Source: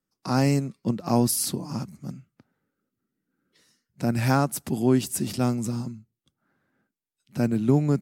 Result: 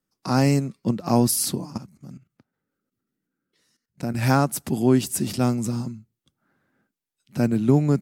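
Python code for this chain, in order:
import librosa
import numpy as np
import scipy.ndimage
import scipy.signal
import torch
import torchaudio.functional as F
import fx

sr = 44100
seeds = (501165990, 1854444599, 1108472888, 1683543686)

y = fx.level_steps(x, sr, step_db=14, at=(1.65, 4.23))
y = y * librosa.db_to_amplitude(2.5)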